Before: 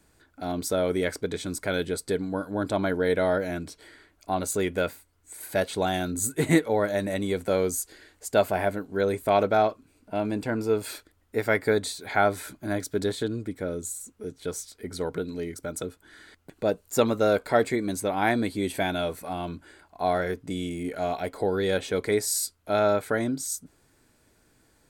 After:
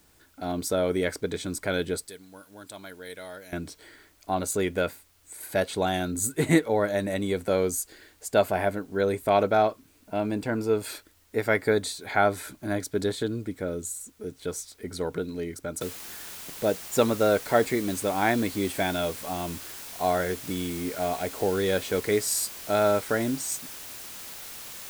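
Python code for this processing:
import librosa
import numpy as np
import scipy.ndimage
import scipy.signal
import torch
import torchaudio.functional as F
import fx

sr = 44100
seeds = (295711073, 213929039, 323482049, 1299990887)

y = fx.pre_emphasis(x, sr, coefficient=0.9, at=(2.07, 3.53))
y = fx.noise_floor_step(y, sr, seeds[0], at_s=15.81, before_db=-64, after_db=-41, tilt_db=0.0)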